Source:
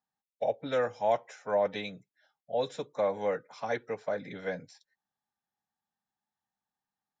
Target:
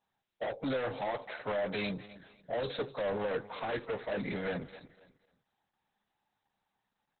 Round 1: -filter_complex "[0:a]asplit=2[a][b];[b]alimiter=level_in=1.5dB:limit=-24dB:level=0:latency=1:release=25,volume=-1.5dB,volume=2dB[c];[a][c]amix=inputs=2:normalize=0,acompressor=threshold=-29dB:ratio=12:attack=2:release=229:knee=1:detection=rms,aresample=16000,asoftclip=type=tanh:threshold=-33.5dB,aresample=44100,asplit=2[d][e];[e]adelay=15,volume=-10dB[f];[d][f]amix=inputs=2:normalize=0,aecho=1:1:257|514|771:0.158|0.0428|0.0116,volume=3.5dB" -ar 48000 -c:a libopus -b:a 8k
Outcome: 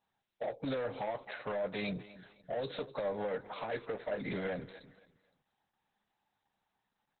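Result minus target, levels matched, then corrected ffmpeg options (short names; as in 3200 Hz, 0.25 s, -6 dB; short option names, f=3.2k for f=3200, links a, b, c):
compressor: peak gain reduction +7 dB
-filter_complex "[0:a]asplit=2[a][b];[b]alimiter=level_in=1.5dB:limit=-24dB:level=0:latency=1:release=25,volume=-1.5dB,volume=2dB[c];[a][c]amix=inputs=2:normalize=0,acompressor=threshold=-21.5dB:ratio=12:attack=2:release=229:knee=1:detection=rms,aresample=16000,asoftclip=type=tanh:threshold=-33.5dB,aresample=44100,asplit=2[d][e];[e]adelay=15,volume=-10dB[f];[d][f]amix=inputs=2:normalize=0,aecho=1:1:257|514|771:0.158|0.0428|0.0116,volume=3.5dB" -ar 48000 -c:a libopus -b:a 8k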